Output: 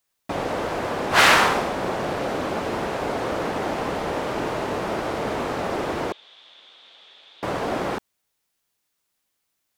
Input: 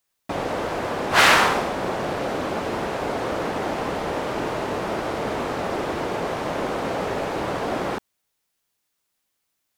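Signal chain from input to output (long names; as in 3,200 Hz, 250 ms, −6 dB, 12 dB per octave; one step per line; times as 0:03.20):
0:06.12–0:07.43: resonant band-pass 3,500 Hz, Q 10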